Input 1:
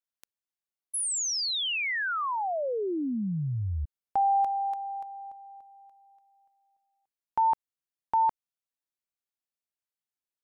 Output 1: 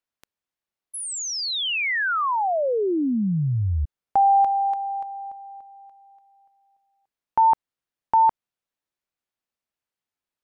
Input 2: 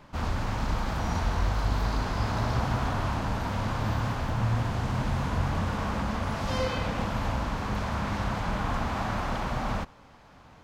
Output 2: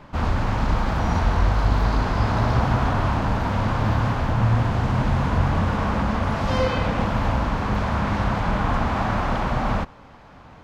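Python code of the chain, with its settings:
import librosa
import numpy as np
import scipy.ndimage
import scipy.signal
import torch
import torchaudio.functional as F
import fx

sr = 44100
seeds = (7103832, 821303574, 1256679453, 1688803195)

y = fx.high_shelf(x, sr, hz=4800.0, db=-11.0)
y = y * librosa.db_to_amplitude(7.5)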